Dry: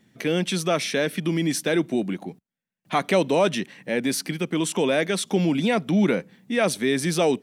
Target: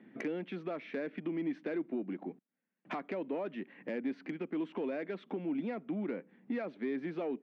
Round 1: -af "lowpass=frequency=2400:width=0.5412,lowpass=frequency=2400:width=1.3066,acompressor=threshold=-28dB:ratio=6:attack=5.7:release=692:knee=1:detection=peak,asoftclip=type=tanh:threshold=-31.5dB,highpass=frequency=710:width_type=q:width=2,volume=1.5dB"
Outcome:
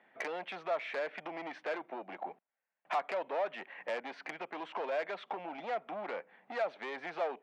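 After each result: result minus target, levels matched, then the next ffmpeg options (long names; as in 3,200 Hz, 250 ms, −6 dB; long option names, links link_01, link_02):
250 Hz band −14.0 dB; downward compressor: peak gain reduction −7.5 dB
-af "lowpass=frequency=2400:width=0.5412,lowpass=frequency=2400:width=1.3066,acompressor=threshold=-28dB:ratio=6:attack=5.7:release=692:knee=1:detection=peak,asoftclip=type=tanh:threshold=-31.5dB,highpass=frequency=270:width_type=q:width=2,volume=1.5dB"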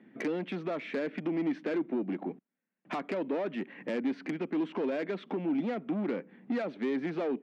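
downward compressor: peak gain reduction −7.5 dB
-af "lowpass=frequency=2400:width=0.5412,lowpass=frequency=2400:width=1.3066,acompressor=threshold=-37dB:ratio=6:attack=5.7:release=692:knee=1:detection=peak,asoftclip=type=tanh:threshold=-31.5dB,highpass=frequency=270:width_type=q:width=2,volume=1.5dB"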